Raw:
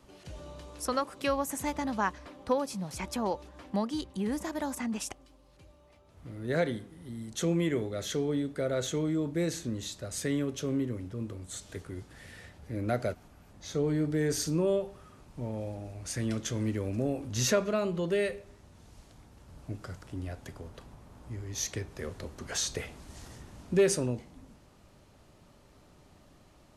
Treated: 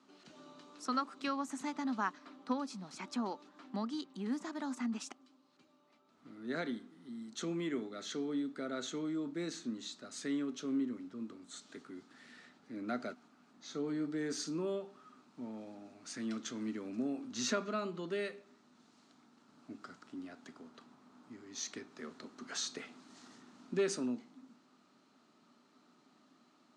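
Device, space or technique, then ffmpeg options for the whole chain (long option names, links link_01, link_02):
television speaker: -af "highpass=frequency=200:width=0.5412,highpass=frequency=200:width=1.3066,equalizer=frequency=250:width_type=q:width=4:gain=9,equalizer=frequency=530:width_type=q:width=4:gain=-8,equalizer=frequency=1300:width_type=q:width=4:gain=8,equalizer=frequency=4100:width_type=q:width=4:gain=5,lowpass=frequency=7800:width=0.5412,lowpass=frequency=7800:width=1.3066,volume=-8dB"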